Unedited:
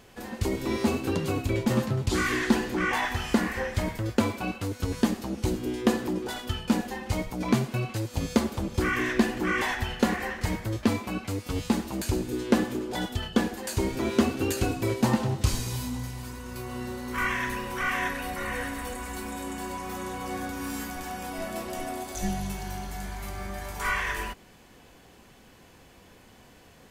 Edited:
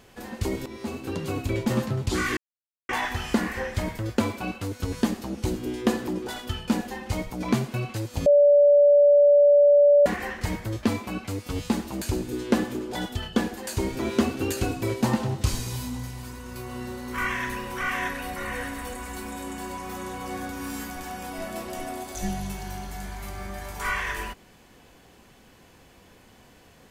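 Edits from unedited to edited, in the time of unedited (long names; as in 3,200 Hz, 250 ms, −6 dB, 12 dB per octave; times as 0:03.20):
0:00.66–0:01.46: fade in, from −14.5 dB
0:02.37–0:02.89: silence
0:08.26–0:10.06: beep over 578 Hz −12.5 dBFS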